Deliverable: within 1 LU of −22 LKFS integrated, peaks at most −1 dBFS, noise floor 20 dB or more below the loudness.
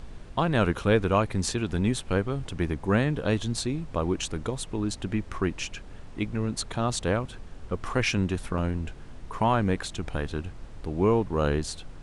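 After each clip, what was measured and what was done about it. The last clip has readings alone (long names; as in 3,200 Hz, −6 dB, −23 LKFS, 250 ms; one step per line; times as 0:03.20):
number of dropouts 1; longest dropout 1.6 ms; background noise floor −43 dBFS; target noise floor −48 dBFS; integrated loudness −28.0 LKFS; sample peak −9.0 dBFS; target loudness −22.0 LKFS
→ repair the gap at 0:08.58, 1.6 ms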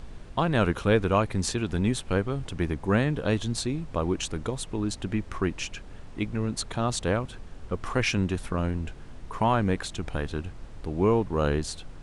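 number of dropouts 0; background noise floor −43 dBFS; target noise floor −48 dBFS
→ noise reduction from a noise print 6 dB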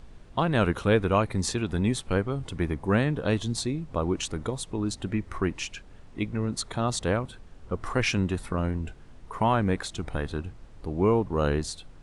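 background noise floor −49 dBFS; integrated loudness −28.0 LKFS; sample peak −9.0 dBFS; target loudness −22.0 LKFS
→ level +6 dB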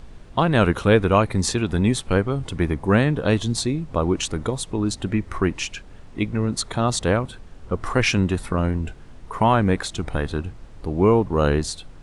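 integrated loudness −22.0 LKFS; sample peak −3.0 dBFS; background noise floor −43 dBFS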